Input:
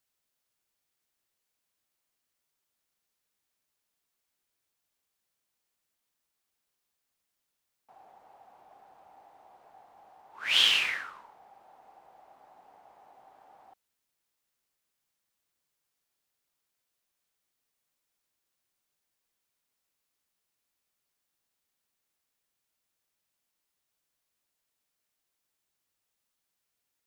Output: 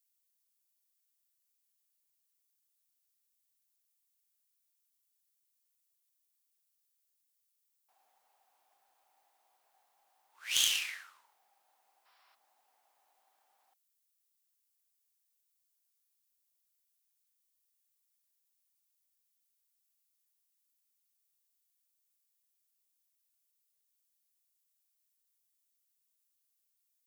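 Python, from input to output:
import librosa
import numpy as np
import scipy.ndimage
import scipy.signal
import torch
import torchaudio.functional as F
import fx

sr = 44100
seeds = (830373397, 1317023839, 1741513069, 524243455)

y = fx.tracing_dist(x, sr, depth_ms=0.065)
y = fx.spec_box(y, sr, start_s=12.06, length_s=0.29, low_hz=960.0, high_hz=5700.0, gain_db=12)
y = librosa.effects.preemphasis(y, coef=0.97, zi=[0.0])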